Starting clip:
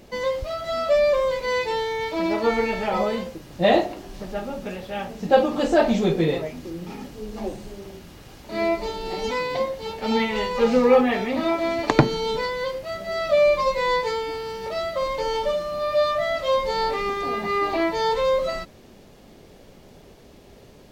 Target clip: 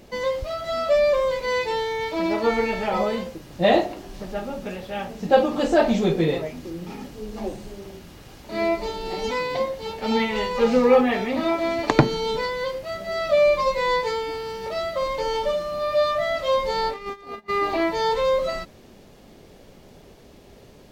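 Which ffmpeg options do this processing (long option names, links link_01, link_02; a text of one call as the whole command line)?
ffmpeg -i in.wav -filter_complex "[0:a]asplit=3[link_01][link_02][link_03];[link_01]afade=type=out:start_time=16.8:duration=0.02[link_04];[link_02]agate=range=-29dB:threshold=-23dB:ratio=16:detection=peak,afade=type=in:start_time=16.8:duration=0.02,afade=type=out:start_time=17.48:duration=0.02[link_05];[link_03]afade=type=in:start_time=17.48:duration=0.02[link_06];[link_04][link_05][link_06]amix=inputs=3:normalize=0" out.wav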